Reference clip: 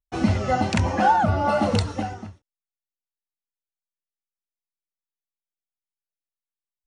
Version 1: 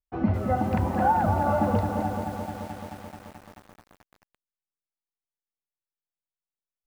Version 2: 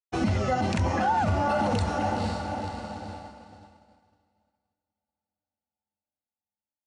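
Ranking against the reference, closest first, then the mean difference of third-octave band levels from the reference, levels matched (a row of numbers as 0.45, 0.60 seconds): 2, 1; 4.5, 7.0 decibels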